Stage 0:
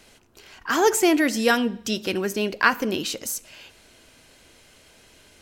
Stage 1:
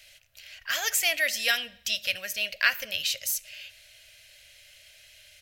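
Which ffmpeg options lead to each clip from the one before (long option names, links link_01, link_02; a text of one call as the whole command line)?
ffmpeg -i in.wav -af "firequalizer=gain_entry='entry(110,0);entry(180,-17);entry(370,-30);entry(580,4);entry(890,-15);entry(1800,8);entry(2600,11);entry(8200,5);entry(14000,13)':delay=0.05:min_phase=1,volume=-7.5dB" out.wav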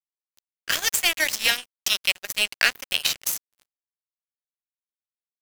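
ffmpeg -i in.wav -filter_complex "[0:a]acrossover=split=900|2300[link_01][link_02][link_03];[link_01]acompressor=threshold=-42dB:ratio=4[link_04];[link_02]acompressor=threshold=-35dB:ratio=4[link_05];[link_03]acompressor=threshold=-28dB:ratio=4[link_06];[link_04][link_05][link_06]amix=inputs=3:normalize=0,asplit=2[link_07][link_08];[link_08]acrusher=bits=3:mix=0:aa=0.5,volume=-3dB[link_09];[link_07][link_09]amix=inputs=2:normalize=0,aeval=exprs='sgn(val(0))*max(abs(val(0))-0.02,0)':channel_layout=same,volume=6dB" out.wav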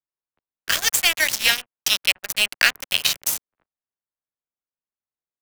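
ffmpeg -i in.wav -filter_complex "[0:a]acrossover=split=280|510|1900[link_01][link_02][link_03][link_04];[link_02]acompressor=threshold=-55dB:ratio=6[link_05];[link_04]acrusher=bits=4:mix=0:aa=0.000001[link_06];[link_01][link_05][link_03][link_06]amix=inputs=4:normalize=0,volume=3dB" out.wav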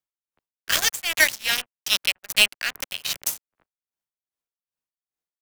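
ffmpeg -i in.wav -af "aeval=exprs='val(0)*pow(10,-18*(0.5-0.5*cos(2*PI*2.5*n/s))/20)':channel_layout=same,volume=4dB" out.wav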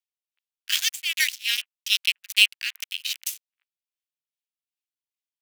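ffmpeg -i in.wav -af "highpass=frequency=2700:width_type=q:width=2,volume=-5dB" out.wav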